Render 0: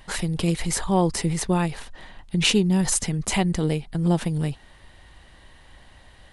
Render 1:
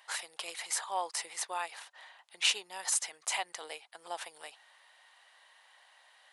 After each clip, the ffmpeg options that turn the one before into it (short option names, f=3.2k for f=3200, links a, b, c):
-af "highpass=f=700:w=0.5412,highpass=f=700:w=1.3066,volume=-6.5dB"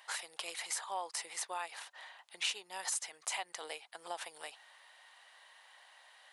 -af "acompressor=threshold=-41dB:ratio=2,volume=1.5dB"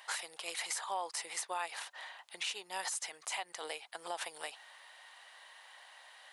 -af "alimiter=level_in=6.5dB:limit=-24dB:level=0:latency=1:release=113,volume=-6.5dB,volume=4dB"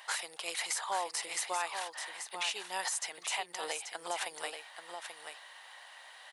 -af "aecho=1:1:834:0.422,volume=3dB"